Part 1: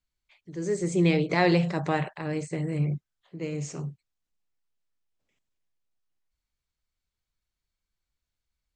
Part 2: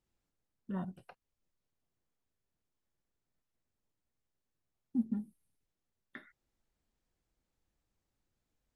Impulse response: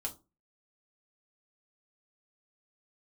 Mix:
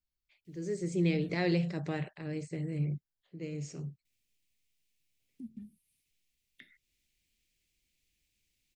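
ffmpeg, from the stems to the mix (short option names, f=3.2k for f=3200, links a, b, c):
-filter_complex "[0:a]bass=f=250:g=-1,treble=f=4k:g=-8,bandreject=f=6.2k:w=20,aexciter=amount=1.5:drive=6.4:freq=4.7k,volume=-4.5dB[a];[1:a]highshelf=f=1.7k:t=q:w=3:g=11,acrossover=split=140[b][c];[c]acompressor=threshold=-53dB:ratio=2.5[d];[b][d]amix=inputs=2:normalize=0,adelay=450,volume=-0.5dB,asplit=3[e][f][g];[e]atrim=end=1.4,asetpts=PTS-STARTPTS,afade=t=out:st=1.396:d=0.004:c=hsin[h];[f]atrim=start=1.4:end=4.05,asetpts=PTS-STARTPTS,volume=0[i];[g]atrim=start=4.05,asetpts=PTS-STARTPTS,afade=t=in:d=0.004:c=hsin[j];[h][i][j]concat=n=3:v=0:a=1[k];[a][k]amix=inputs=2:normalize=0,equalizer=f=980:w=0.97:g=-12.5"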